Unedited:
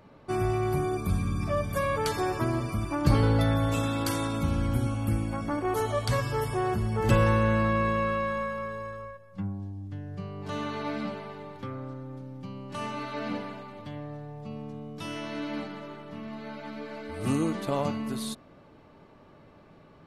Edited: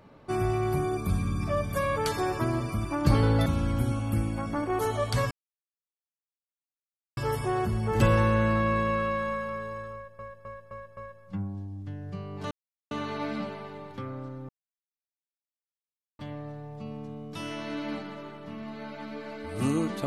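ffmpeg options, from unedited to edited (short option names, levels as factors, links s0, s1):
-filter_complex "[0:a]asplit=10[s0][s1][s2][s3][s4][s5][s6][s7][s8][s9];[s0]atrim=end=3.462[s10];[s1]atrim=start=4.408:end=6.26,asetpts=PTS-STARTPTS,afade=t=out:st=1.848:d=0.004:c=hsin,apad=pad_dur=1.86[s11];[s2]atrim=start=6.26:end=9.282,asetpts=PTS-STARTPTS,afade=t=in:d=0.004:c=hsin[s12];[s3]atrim=start=9.018:end=9.282[s13];[s4]atrim=start=9.018:end=9.282[s14];[s5]atrim=start=9.018:end=9.282[s15];[s6]atrim=start=9.018:end=10.56,asetpts=PTS-STARTPTS,afade=t=out:st=1.538:d=0.004:c=hsin,apad=pad_dur=0.4[s16];[s7]atrim=start=10.56:end=12.14,asetpts=PTS-STARTPTS,afade=t=in:d=0.004:c=hsin,afade=t=out:st=1.576:d=0.004:c=hsin[s17];[s8]atrim=start=12.14:end=13.84,asetpts=PTS-STARTPTS,volume=0[s18];[s9]atrim=start=13.84,asetpts=PTS-STARTPTS,afade=t=in:d=0.004:c=hsin[s19];[s11][s12]concat=n=2:v=0:a=1[s20];[s10][s20]acrossfade=d=0.004:c1=hsin:c2=hsin[s21];[s21][s13]acrossfade=d=0.004:c1=hsin:c2=hsin[s22];[s22][s14]acrossfade=d=0.004:c1=hsin:c2=hsin[s23];[s23][s15]acrossfade=d=0.004:c1=hsin:c2=hsin[s24];[s16][s17][s18][s19]concat=n=4:v=0:a=1[s25];[s24][s25]acrossfade=d=0.004:c1=hsin:c2=hsin"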